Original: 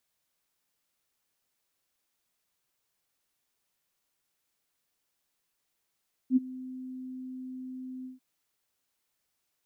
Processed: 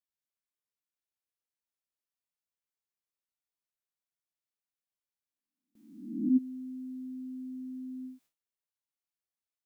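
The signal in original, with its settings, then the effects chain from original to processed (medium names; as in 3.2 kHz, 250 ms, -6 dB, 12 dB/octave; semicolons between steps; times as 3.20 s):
ADSR sine 257 Hz, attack 64 ms, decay 23 ms, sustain -20.5 dB, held 1.75 s, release 143 ms -17 dBFS
reverse spectral sustain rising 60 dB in 0.89 s; gate with hold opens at -56 dBFS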